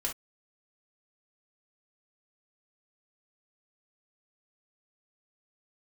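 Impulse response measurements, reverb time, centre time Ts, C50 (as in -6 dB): no single decay rate, 17 ms, 9.0 dB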